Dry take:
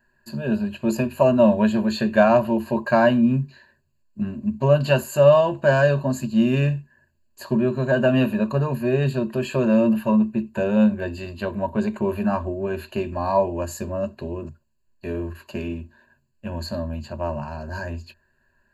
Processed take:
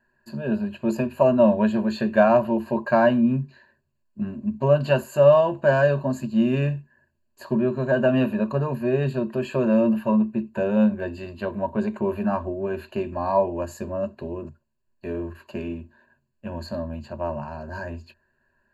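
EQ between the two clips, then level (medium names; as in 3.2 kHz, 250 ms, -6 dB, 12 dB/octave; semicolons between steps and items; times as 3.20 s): bass shelf 130 Hz -7 dB; treble shelf 2.8 kHz -9.5 dB; 0.0 dB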